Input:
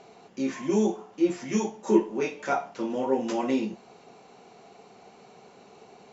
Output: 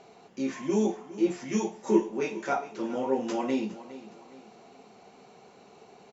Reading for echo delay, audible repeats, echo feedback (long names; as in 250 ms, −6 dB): 411 ms, 3, 40%